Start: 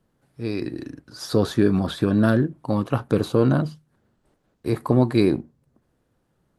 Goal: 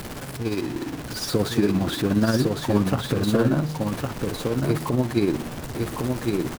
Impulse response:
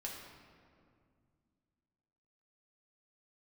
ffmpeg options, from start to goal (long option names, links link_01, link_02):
-filter_complex "[0:a]aeval=exprs='val(0)+0.5*0.0473*sgn(val(0))':channel_layout=same,alimiter=limit=-8.5dB:level=0:latency=1:release=281,tremolo=f=17:d=0.49,asplit=2[link_01][link_02];[link_02]aecho=0:1:1107:0.668[link_03];[link_01][link_03]amix=inputs=2:normalize=0"